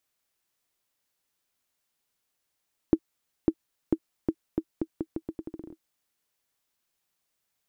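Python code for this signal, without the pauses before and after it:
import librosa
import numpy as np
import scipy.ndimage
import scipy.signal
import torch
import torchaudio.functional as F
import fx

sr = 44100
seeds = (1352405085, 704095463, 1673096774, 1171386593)

y = fx.bouncing_ball(sr, first_gap_s=0.55, ratio=0.81, hz=322.0, decay_ms=59.0, level_db=-8.0)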